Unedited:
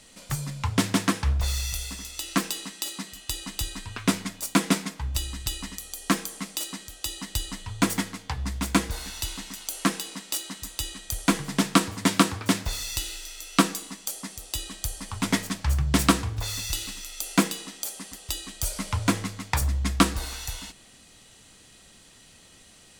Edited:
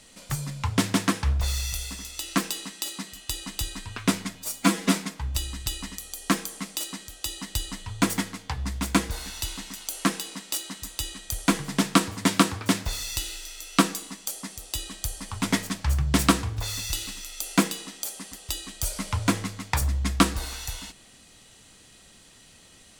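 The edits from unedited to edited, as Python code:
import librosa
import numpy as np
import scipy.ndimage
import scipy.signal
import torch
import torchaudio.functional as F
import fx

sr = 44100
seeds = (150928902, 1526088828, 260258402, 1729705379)

y = fx.edit(x, sr, fx.stretch_span(start_s=4.35, length_s=0.4, factor=1.5), tone=tone)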